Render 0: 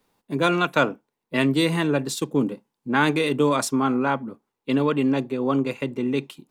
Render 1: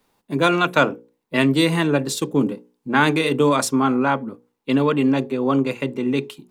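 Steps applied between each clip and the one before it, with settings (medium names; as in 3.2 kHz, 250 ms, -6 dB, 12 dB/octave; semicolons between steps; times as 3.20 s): hum notches 60/120/180/240/300/360/420/480/540 Hz; trim +3.5 dB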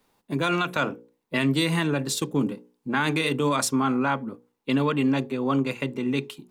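peak limiter -10 dBFS, peak gain reduction 8 dB; dynamic bell 450 Hz, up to -5 dB, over -29 dBFS, Q 0.74; trim -1.5 dB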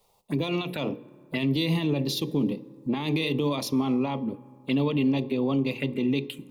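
peak limiter -20.5 dBFS, peak gain reduction 8 dB; touch-sensitive phaser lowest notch 270 Hz, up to 1.5 kHz, full sweep at -28 dBFS; reverberation RT60 2.6 s, pre-delay 7 ms, DRR 19 dB; trim +4 dB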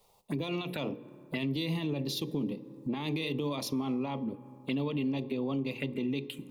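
compression 2:1, threshold -35 dBFS, peak gain reduction 8.5 dB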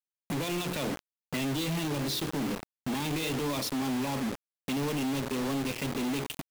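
companded quantiser 2-bit; trim -4 dB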